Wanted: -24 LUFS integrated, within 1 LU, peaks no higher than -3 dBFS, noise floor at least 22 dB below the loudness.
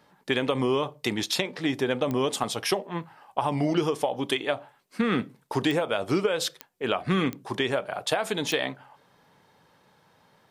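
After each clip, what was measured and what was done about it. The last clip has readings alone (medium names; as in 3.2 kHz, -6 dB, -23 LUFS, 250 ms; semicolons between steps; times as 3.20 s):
clicks found 5; loudness -27.5 LUFS; peak level -8.5 dBFS; loudness target -24.0 LUFS
-> de-click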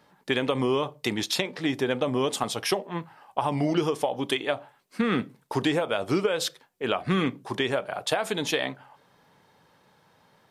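clicks found 0; loudness -27.5 LUFS; peak level -8.5 dBFS; loudness target -24.0 LUFS
-> trim +3.5 dB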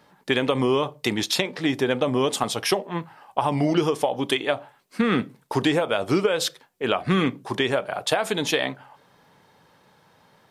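loudness -24.0 LUFS; peak level -5.0 dBFS; noise floor -60 dBFS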